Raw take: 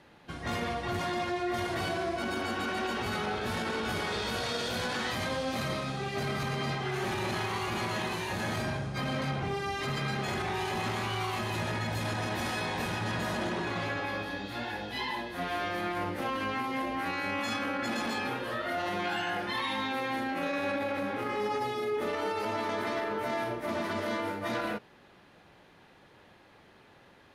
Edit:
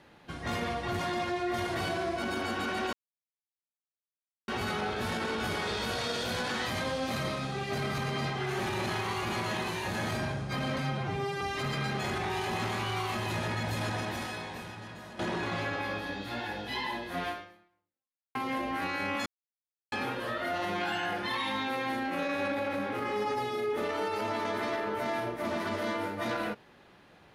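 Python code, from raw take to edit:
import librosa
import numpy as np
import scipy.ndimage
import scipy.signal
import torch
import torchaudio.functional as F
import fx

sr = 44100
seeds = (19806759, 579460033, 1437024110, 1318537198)

y = fx.edit(x, sr, fx.insert_silence(at_s=2.93, length_s=1.55),
    fx.stretch_span(start_s=9.23, length_s=0.42, factor=1.5),
    fx.fade_out_to(start_s=12.16, length_s=1.27, curve='qua', floor_db=-14.0),
    fx.fade_out_span(start_s=15.52, length_s=1.07, curve='exp'),
    fx.silence(start_s=17.5, length_s=0.66), tone=tone)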